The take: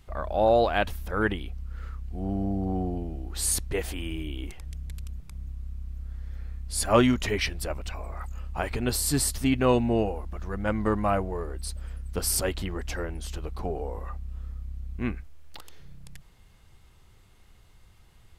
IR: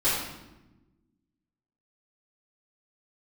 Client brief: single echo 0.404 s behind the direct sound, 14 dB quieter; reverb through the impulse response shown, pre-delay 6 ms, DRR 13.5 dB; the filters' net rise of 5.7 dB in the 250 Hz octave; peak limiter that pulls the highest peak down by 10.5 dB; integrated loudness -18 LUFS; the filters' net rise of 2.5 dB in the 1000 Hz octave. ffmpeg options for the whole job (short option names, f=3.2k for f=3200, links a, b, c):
-filter_complex "[0:a]equalizer=f=250:t=o:g=6.5,equalizer=f=1k:t=o:g=3,alimiter=limit=-14.5dB:level=0:latency=1,aecho=1:1:404:0.2,asplit=2[a][b];[1:a]atrim=start_sample=2205,adelay=6[c];[b][c]afir=irnorm=-1:irlink=0,volume=-26.5dB[d];[a][d]amix=inputs=2:normalize=0,volume=10dB"